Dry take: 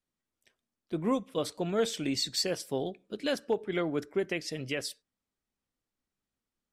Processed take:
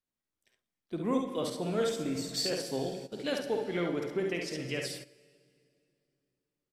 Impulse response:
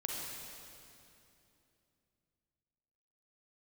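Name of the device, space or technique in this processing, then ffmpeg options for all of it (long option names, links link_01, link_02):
keyed gated reverb: -filter_complex "[0:a]asettb=1/sr,asplit=3[link_01][link_02][link_03];[link_01]atrim=end=1.894[link_04];[link_02]atrim=start=1.89:end=2.33,asetpts=PTS-STARTPTS,afade=type=in:duration=0.004:curve=qsin,afade=type=out:start_time=0.436:duration=0.004:curve=qsin,equalizer=frequency=3600:width_type=o:width=1.3:gain=-14[link_05];[link_03]atrim=start=2.326[link_06];[link_04][link_05]acrossfade=duration=0.004:curve1=hsin:curve2=qsin[link_07];[link_07][link_06]acrossfade=duration=0.004:curve1=qsin:curve2=hsin,aecho=1:1:52|68:0.422|0.562,asplit=3[link_08][link_09][link_10];[1:a]atrim=start_sample=2205[link_11];[link_09][link_11]afir=irnorm=-1:irlink=0[link_12];[link_10]apad=whole_len=299968[link_13];[link_12][link_13]sidechaingate=range=-14dB:threshold=-47dB:ratio=16:detection=peak,volume=-5dB[link_14];[link_08][link_14]amix=inputs=2:normalize=0,volume=-6.5dB"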